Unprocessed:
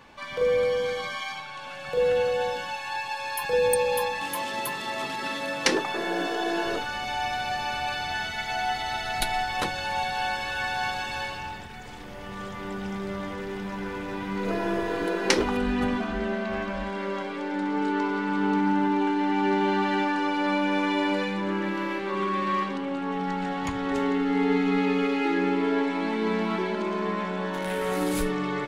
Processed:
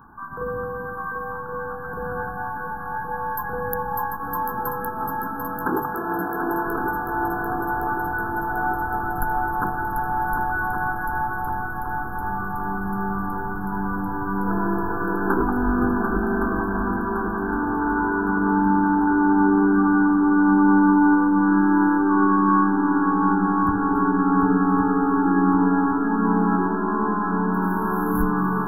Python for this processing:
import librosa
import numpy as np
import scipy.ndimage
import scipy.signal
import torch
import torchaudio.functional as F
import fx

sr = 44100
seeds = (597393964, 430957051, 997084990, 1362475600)

y = fx.brickwall_bandstop(x, sr, low_hz=1700.0, high_hz=11000.0)
y = fx.fixed_phaser(y, sr, hz=2100.0, stages=6)
y = fx.echo_heads(y, sr, ms=371, heads='second and third', feedback_pct=73, wet_db=-7)
y = y * librosa.db_to_amplitude(7.0)